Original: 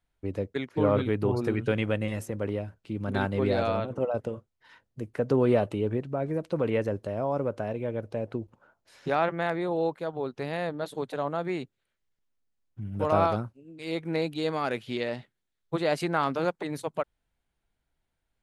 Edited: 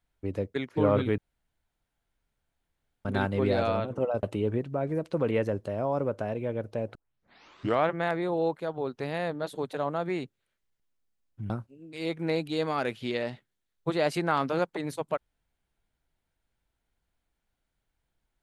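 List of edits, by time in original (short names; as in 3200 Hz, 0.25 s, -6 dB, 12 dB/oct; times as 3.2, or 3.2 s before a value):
1.18–3.05 room tone
4.23–5.62 cut
8.34 tape start 0.94 s
12.89–13.36 cut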